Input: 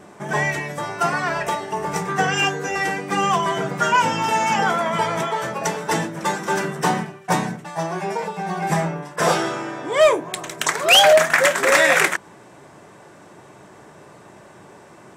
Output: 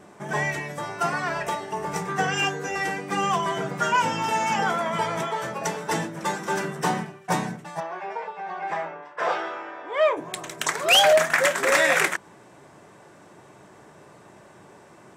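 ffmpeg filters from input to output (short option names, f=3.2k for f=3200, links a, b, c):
-filter_complex "[0:a]asplit=3[a][b][c];[a]afade=t=out:st=7.79:d=0.02[d];[b]highpass=540,lowpass=2.6k,afade=t=in:st=7.79:d=0.02,afade=t=out:st=10.16:d=0.02[e];[c]afade=t=in:st=10.16:d=0.02[f];[d][e][f]amix=inputs=3:normalize=0,volume=-4.5dB"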